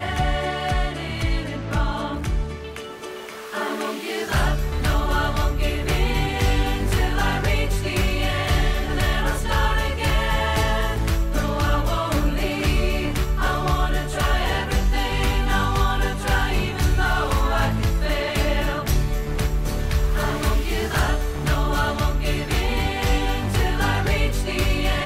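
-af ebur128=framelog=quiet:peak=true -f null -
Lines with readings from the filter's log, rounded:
Integrated loudness:
  I:         -22.9 LUFS
  Threshold: -33.0 LUFS
Loudness range:
  LRA:         3.8 LU
  Threshold: -43.0 LUFS
  LRA low:   -25.8 LUFS
  LRA high:  -22.0 LUFS
True peak:
  Peak:       -9.0 dBFS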